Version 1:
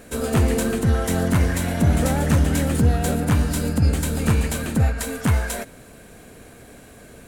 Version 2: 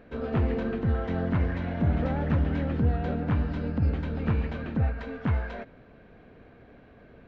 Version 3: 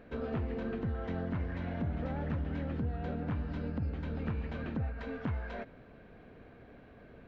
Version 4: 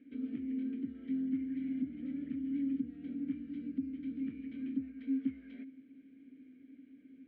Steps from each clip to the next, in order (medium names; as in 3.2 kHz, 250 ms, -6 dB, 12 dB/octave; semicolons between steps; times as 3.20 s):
Gaussian low-pass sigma 2.9 samples; trim -7 dB
compression 3:1, threshold -32 dBFS, peak gain reduction 10 dB; trim -2 dB
vowel filter i; peaking EQ 270 Hz +12 dB 0.31 oct